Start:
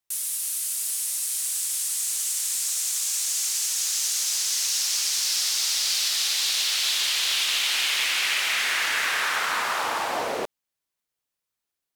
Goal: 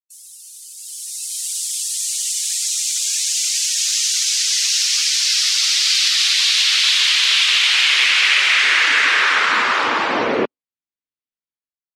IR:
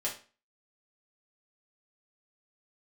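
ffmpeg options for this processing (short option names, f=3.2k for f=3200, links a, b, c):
-af "afftdn=nr=24:nf=-39,firequalizer=gain_entry='entry(160,0);entry(240,4);entry(720,-10);entry(1100,-4);entry(2200,-1);entry(13000,-18)':delay=0.05:min_phase=1,dynaudnorm=f=760:g=3:m=15.5dB"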